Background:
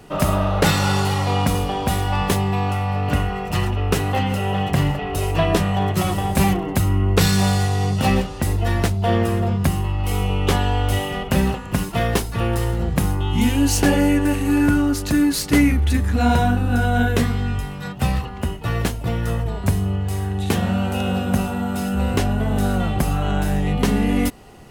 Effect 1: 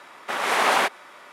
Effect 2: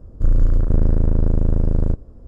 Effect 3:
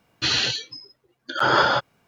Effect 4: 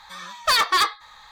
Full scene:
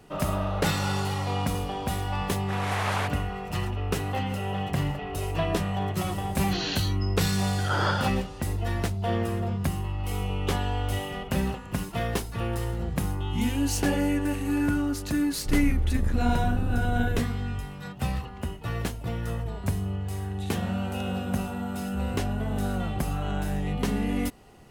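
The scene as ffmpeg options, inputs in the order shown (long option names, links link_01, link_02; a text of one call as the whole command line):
ffmpeg -i bed.wav -i cue0.wav -i cue1.wav -i cue2.wav -filter_complex "[0:a]volume=-8.5dB[link_01];[3:a]dynaudnorm=framelen=130:gausssize=7:maxgain=11.5dB[link_02];[1:a]atrim=end=1.32,asetpts=PTS-STARTPTS,volume=-9.5dB,afade=type=in:duration=0.004:curve=hsin,afade=type=out:start_time=1.316:duration=0.004:curve=hsin,adelay=2200[link_03];[link_02]atrim=end=2.07,asetpts=PTS-STARTPTS,volume=-13.5dB,afade=type=in:duration=0.004:curve=hsin,afade=type=out:start_time=2.066:duration=0.004:curve=hsin,adelay=6290[link_04];[2:a]atrim=end=2.27,asetpts=PTS-STARTPTS,volume=-13dB,afade=type=in:duration=0.004:curve=hsin,afade=type=out:start_time=2.266:duration=0.004:curve=hsin,adelay=15250[link_05];[link_01][link_03][link_04][link_05]amix=inputs=4:normalize=0" out.wav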